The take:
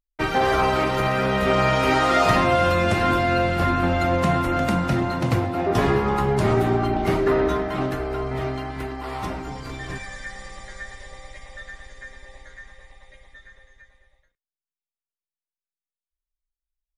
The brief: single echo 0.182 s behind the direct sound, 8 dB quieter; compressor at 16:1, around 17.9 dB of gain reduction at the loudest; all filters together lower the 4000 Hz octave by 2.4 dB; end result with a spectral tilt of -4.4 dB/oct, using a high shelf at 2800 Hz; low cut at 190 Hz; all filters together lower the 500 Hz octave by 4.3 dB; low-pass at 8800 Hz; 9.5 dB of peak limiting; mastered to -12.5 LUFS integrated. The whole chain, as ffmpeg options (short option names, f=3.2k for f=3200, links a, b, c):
-af "highpass=190,lowpass=8.8k,equalizer=f=500:t=o:g=-6,highshelf=f=2.8k:g=6.5,equalizer=f=4k:t=o:g=-8.5,acompressor=threshold=-34dB:ratio=16,alimiter=level_in=10dB:limit=-24dB:level=0:latency=1,volume=-10dB,aecho=1:1:182:0.398,volume=29.5dB"